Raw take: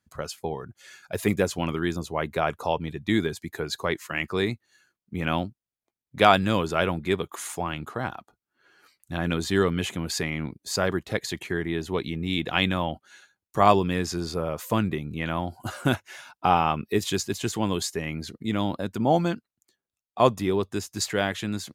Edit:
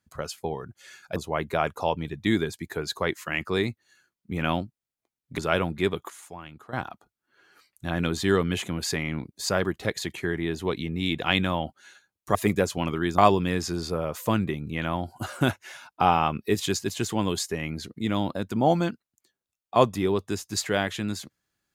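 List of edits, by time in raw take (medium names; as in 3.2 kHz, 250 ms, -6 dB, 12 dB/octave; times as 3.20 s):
1.16–1.99 s: move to 13.62 s
6.21–6.65 s: delete
7.37–8.00 s: gain -11.5 dB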